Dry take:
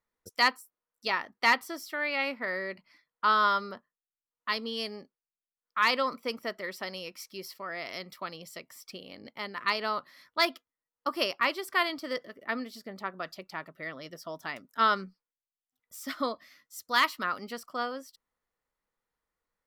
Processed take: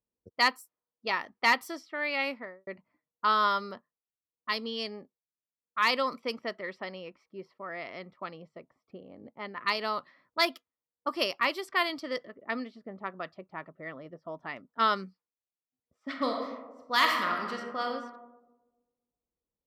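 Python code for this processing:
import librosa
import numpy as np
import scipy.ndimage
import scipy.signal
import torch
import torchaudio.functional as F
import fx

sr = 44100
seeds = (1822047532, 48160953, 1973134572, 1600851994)

y = fx.studio_fade_out(x, sr, start_s=2.26, length_s=0.41)
y = fx.reverb_throw(y, sr, start_s=16.01, length_s=1.83, rt60_s=1.4, drr_db=1.5)
y = scipy.signal.sosfilt(scipy.signal.butter(2, 42.0, 'highpass', fs=sr, output='sos'), y)
y = fx.env_lowpass(y, sr, base_hz=460.0, full_db=-27.0)
y = fx.peak_eq(y, sr, hz=1500.0, db=-4.5, octaves=0.25)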